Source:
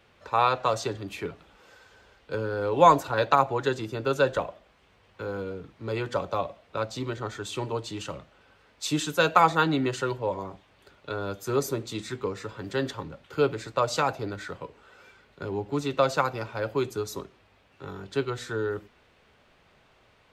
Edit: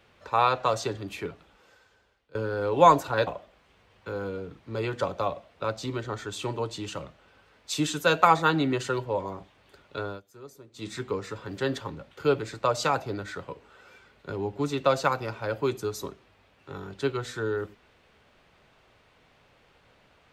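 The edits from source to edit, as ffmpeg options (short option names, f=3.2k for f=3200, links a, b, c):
-filter_complex "[0:a]asplit=5[a][b][c][d][e];[a]atrim=end=2.35,asetpts=PTS-STARTPTS,afade=t=out:st=1.13:d=1.22:silence=0.0794328[f];[b]atrim=start=2.35:end=3.272,asetpts=PTS-STARTPTS,afade=t=in:d=0.004:c=hsin:silence=0.0794328[g];[c]atrim=start=4.398:end=11.34,asetpts=PTS-STARTPTS,afade=t=out:st=6.702:d=0.24:c=qsin:silence=0.1[h];[d]atrim=start=11.34:end=11.86,asetpts=PTS-STARTPTS,volume=-20dB[i];[e]atrim=start=11.86,asetpts=PTS-STARTPTS,afade=t=in:d=0.24:c=qsin:silence=0.1[j];[f][g]concat=n=2:v=0:a=1[k];[h][i][j]concat=n=3:v=0:a=1[l];[k][l]acrossfade=d=0.004:c1=hsin:c2=hsin"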